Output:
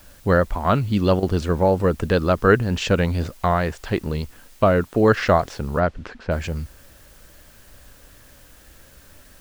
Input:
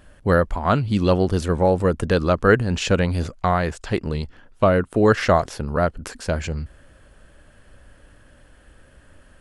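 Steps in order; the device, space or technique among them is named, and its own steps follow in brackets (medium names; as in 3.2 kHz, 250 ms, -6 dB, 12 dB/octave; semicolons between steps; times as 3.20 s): worn cassette (low-pass 6.2 kHz; wow and flutter; level dips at 1.20 s, 26 ms -11 dB; white noise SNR 31 dB); 5.79–6.30 s: low-pass 4.6 kHz -> 2.3 kHz 12 dB/octave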